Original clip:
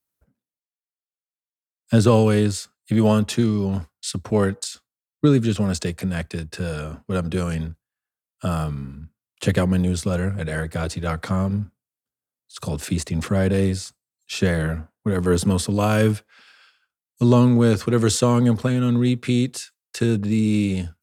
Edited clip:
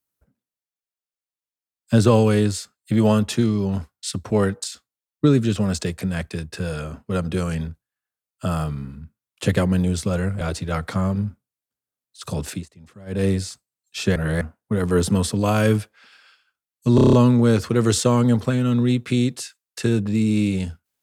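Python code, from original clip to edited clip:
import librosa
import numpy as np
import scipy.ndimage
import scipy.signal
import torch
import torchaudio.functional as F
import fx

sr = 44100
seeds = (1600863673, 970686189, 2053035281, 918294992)

y = fx.edit(x, sr, fx.cut(start_s=10.41, length_s=0.35),
    fx.fade_down_up(start_s=12.83, length_s=0.76, db=-22.5, fade_s=0.18),
    fx.reverse_span(start_s=14.51, length_s=0.25),
    fx.stutter(start_s=17.3, slice_s=0.03, count=7), tone=tone)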